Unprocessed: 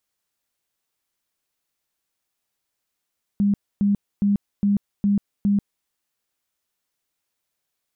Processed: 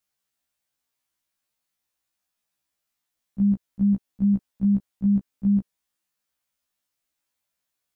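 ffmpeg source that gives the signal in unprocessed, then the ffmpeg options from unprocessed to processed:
-f lavfi -i "aevalsrc='0.168*sin(2*PI*202*mod(t,0.41))*lt(mod(t,0.41),28/202)':d=2.46:s=44100"
-af "equalizer=f=410:t=o:w=0.22:g=-9.5,afftfilt=real='re*1.73*eq(mod(b,3),0)':imag='im*1.73*eq(mod(b,3),0)':win_size=2048:overlap=0.75"

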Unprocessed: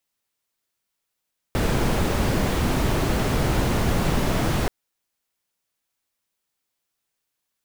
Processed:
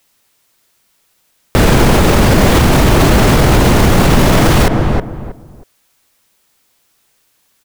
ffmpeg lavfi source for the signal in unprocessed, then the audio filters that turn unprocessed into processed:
-f lavfi -i "anoisesrc=c=brown:a=0.417:d=3.13:r=44100:seed=1"
-filter_complex "[0:a]acontrast=67,asplit=2[s0][s1];[s1]adelay=318,lowpass=f=1200:p=1,volume=0.316,asplit=2[s2][s3];[s3]adelay=318,lowpass=f=1200:p=1,volume=0.25,asplit=2[s4][s5];[s5]adelay=318,lowpass=f=1200:p=1,volume=0.25[s6];[s0][s2][s4][s6]amix=inputs=4:normalize=0,alimiter=level_in=5.31:limit=0.891:release=50:level=0:latency=1"

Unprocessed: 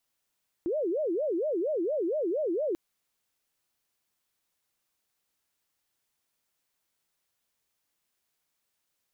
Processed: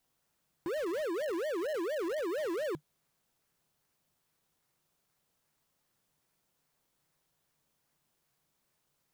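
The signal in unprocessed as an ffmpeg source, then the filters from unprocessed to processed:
-f lavfi -i "aevalsrc='0.0501*sin(2*PI*(476.5*t-149.5/(2*PI*4.3)*sin(2*PI*4.3*t)))':d=2.09:s=44100"
-filter_complex "[0:a]equalizer=f=150:t=o:w=0.46:g=13.5,asplit=2[s0][s1];[s1]acrusher=samples=15:mix=1:aa=0.000001:lfo=1:lforange=9:lforate=2.5,volume=0.447[s2];[s0][s2]amix=inputs=2:normalize=0,asoftclip=type=tanh:threshold=0.0224"

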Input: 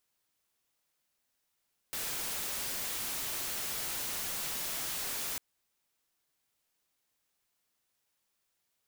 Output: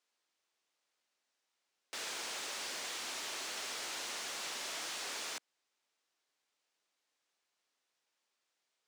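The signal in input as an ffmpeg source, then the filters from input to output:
-f lavfi -i "anoisesrc=c=white:a=0.0259:d=3.45:r=44100:seed=1"
-filter_complex "[0:a]acrossover=split=260 7900:gain=0.0891 1 0.0708[s0][s1][s2];[s0][s1][s2]amix=inputs=3:normalize=0"

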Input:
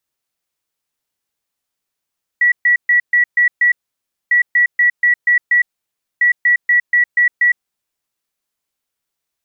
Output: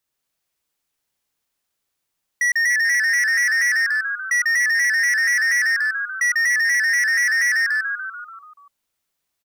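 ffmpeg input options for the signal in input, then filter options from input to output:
-f lavfi -i "aevalsrc='0.376*sin(2*PI*1940*t)*clip(min(mod(mod(t,1.9),0.24),0.11-mod(mod(t,1.9),0.24))/0.005,0,1)*lt(mod(t,1.9),1.44)':d=5.7:s=44100"
-filter_complex "[0:a]asplit=2[s0][s1];[s1]asplit=8[s2][s3][s4][s5][s6][s7][s8][s9];[s2]adelay=145,afreqshift=-100,volume=0.668[s10];[s3]adelay=290,afreqshift=-200,volume=0.389[s11];[s4]adelay=435,afreqshift=-300,volume=0.224[s12];[s5]adelay=580,afreqshift=-400,volume=0.13[s13];[s6]adelay=725,afreqshift=-500,volume=0.0759[s14];[s7]adelay=870,afreqshift=-600,volume=0.0437[s15];[s8]adelay=1015,afreqshift=-700,volume=0.0254[s16];[s9]adelay=1160,afreqshift=-800,volume=0.0148[s17];[s10][s11][s12][s13][s14][s15][s16][s17]amix=inputs=8:normalize=0[s18];[s0][s18]amix=inputs=2:normalize=0,asoftclip=type=hard:threshold=0.141"

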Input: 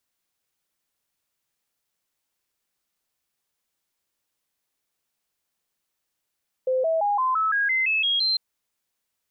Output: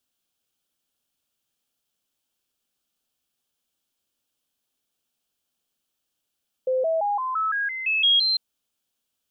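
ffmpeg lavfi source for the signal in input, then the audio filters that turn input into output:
-f lavfi -i "aevalsrc='0.106*clip(min(mod(t,0.17),0.17-mod(t,0.17))/0.005,0,1)*sin(2*PI*516*pow(2,floor(t/0.17)/3)*mod(t,0.17))':d=1.7:s=44100"
-af "equalizer=f=250:t=o:w=0.33:g=6,equalizer=f=1000:t=o:w=0.33:g=-5,equalizer=f=2000:t=o:w=0.33:g=-10,equalizer=f=3150:t=o:w=0.33:g=6"

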